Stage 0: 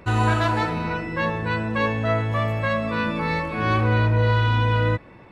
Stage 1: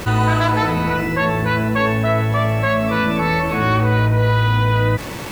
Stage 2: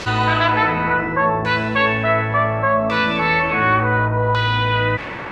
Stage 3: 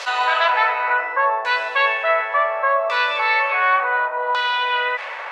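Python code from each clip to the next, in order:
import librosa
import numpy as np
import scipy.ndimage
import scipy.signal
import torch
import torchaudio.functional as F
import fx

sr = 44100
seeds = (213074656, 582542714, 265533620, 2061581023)

y1 = fx.quant_dither(x, sr, seeds[0], bits=8, dither='none')
y1 = fx.env_flatten(y1, sr, amount_pct=50)
y1 = y1 * librosa.db_to_amplitude(3.0)
y2 = fx.low_shelf(y1, sr, hz=400.0, db=-8.0)
y2 = fx.filter_lfo_lowpass(y2, sr, shape='saw_down', hz=0.69, low_hz=930.0, high_hz=5300.0, q=1.5)
y2 = y2 * librosa.db_to_amplitude(2.0)
y3 = scipy.signal.sosfilt(scipy.signal.butter(6, 550.0, 'highpass', fs=sr, output='sos'), y2)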